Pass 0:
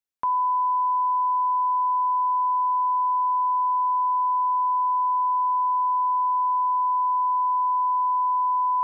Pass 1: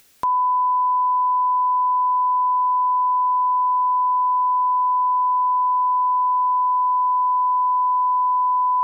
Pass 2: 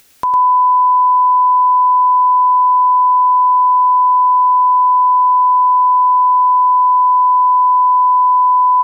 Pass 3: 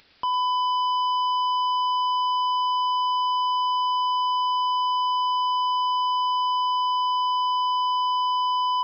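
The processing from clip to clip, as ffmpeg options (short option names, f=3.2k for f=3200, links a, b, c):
-af "acompressor=mode=upward:threshold=-41dB:ratio=2.5,equalizer=f=930:w=1.5:g=-5,volume=8.5dB"
-af "aecho=1:1:105:0.473,volume=5dB"
-af "asoftclip=type=tanh:threshold=-19.5dB,aresample=11025,aresample=44100,volume=-3dB"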